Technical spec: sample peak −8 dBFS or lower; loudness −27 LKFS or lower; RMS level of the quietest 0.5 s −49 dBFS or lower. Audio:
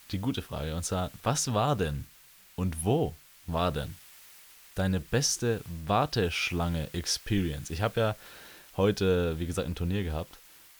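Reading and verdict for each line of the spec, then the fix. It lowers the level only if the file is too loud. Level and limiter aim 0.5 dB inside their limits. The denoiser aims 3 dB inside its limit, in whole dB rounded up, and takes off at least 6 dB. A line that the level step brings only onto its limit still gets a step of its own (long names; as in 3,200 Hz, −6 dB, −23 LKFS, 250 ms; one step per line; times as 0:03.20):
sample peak −13.0 dBFS: in spec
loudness −30.0 LKFS: in spec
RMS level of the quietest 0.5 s −56 dBFS: in spec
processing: no processing needed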